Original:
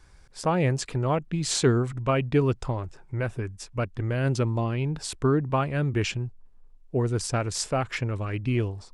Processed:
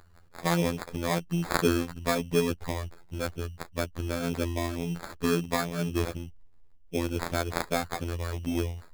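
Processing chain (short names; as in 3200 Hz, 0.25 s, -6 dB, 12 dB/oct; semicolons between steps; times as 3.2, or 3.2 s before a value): robotiser 85.5 Hz; sample-rate reducer 2900 Hz, jitter 0%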